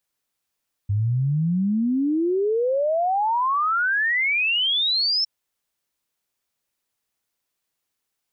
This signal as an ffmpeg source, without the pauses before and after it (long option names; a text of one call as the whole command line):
ffmpeg -f lavfi -i "aevalsrc='0.119*clip(min(t,4.36-t)/0.01,0,1)*sin(2*PI*98*4.36/log(5400/98)*(exp(log(5400/98)*t/4.36)-1))':duration=4.36:sample_rate=44100" out.wav